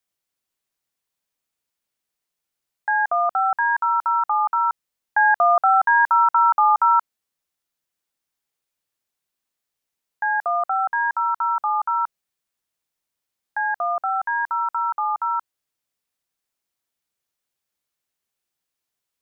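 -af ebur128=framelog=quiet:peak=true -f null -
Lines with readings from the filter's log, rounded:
Integrated loudness:
  I:         -20.0 LUFS
  Threshold: -30.1 LUFS
Loudness range:
  LRA:        11.8 LU
  Threshold: -42.4 LUFS
  LRA low:   -29.6 LUFS
  LRA high:  -17.9 LUFS
True peak:
  Peak:       -9.2 dBFS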